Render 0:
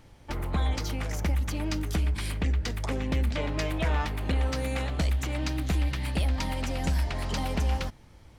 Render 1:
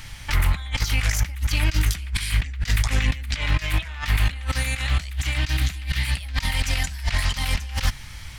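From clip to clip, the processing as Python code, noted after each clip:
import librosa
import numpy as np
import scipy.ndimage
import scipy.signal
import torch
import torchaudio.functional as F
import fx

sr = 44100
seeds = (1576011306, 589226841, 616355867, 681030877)

y = fx.curve_eq(x, sr, hz=(130.0, 410.0, 1900.0), db=(0, -14, 11))
y = fx.over_compress(y, sr, threshold_db=-31.0, ratio=-0.5)
y = fx.low_shelf(y, sr, hz=63.0, db=7.0)
y = F.gain(torch.from_numpy(y), 6.0).numpy()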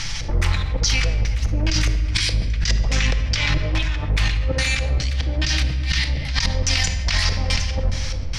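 y = fx.filter_lfo_lowpass(x, sr, shape='square', hz=2.4, low_hz=500.0, high_hz=5600.0, q=3.3)
y = fx.room_shoebox(y, sr, seeds[0], volume_m3=1300.0, walls='mixed', distance_m=0.71)
y = fx.env_flatten(y, sr, amount_pct=50)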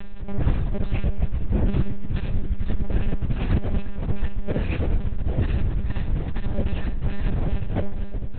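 y = scipy.signal.medfilt(x, 41)
y = y + 10.0 ** (-23.5 / 20.0) * np.pad(y, (int(363 * sr / 1000.0), 0))[:len(y)]
y = fx.lpc_monotone(y, sr, seeds[1], pitch_hz=200.0, order=10)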